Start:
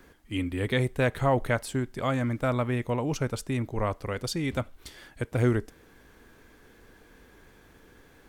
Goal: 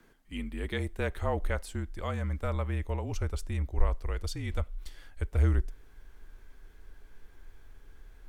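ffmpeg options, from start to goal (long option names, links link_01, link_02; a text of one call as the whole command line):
ffmpeg -i in.wav -af "afreqshift=-40,asubboost=boost=11.5:cutoff=57,volume=-7dB" out.wav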